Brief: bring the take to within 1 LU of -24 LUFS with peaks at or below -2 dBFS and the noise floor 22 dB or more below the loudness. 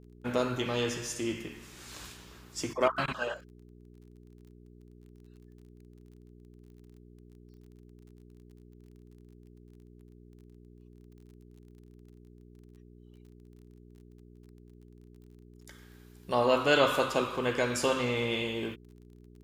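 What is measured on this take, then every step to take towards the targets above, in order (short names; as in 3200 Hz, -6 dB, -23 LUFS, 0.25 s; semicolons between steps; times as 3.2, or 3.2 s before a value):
ticks 29/s; hum 60 Hz; harmonics up to 420 Hz; hum level -51 dBFS; loudness -30.0 LUFS; peak -11.5 dBFS; loudness target -24.0 LUFS
-> de-click; de-hum 60 Hz, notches 7; gain +6 dB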